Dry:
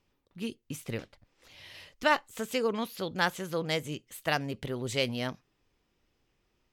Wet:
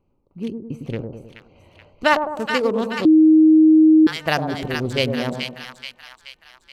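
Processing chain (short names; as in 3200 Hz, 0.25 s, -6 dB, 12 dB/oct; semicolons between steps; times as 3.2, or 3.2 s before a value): Wiener smoothing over 25 samples; 0.86–1.89 high shelf 4300 Hz -10.5 dB; split-band echo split 1000 Hz, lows 0.104 s, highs 0.428 s, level -5 dB; 3.05–4.07 bleep 314 Hz -16.5 dBFS; gain +8.5 dB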